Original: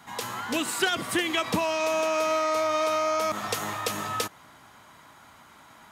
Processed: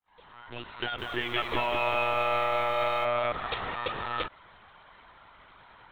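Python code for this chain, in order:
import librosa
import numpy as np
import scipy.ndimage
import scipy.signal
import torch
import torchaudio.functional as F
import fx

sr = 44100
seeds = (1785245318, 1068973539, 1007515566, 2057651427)

y = fx.fade_in_head(x, sr, length_s=1.81)
y = fx.low_shelf(y, sr, hz=250.0, db=-8.0)
y = fx.lpc_monotone(y, sr, seeds[0], pitch_hz=120.0, order=16)
y = fx.echo_crushed(y, sr, ms=194, feedback_pct=55, bits=9, wet_db=-5.0, at=(0.79, 3.05))
y = F.gain(torch.from_numpy(y), -1.0).numpy()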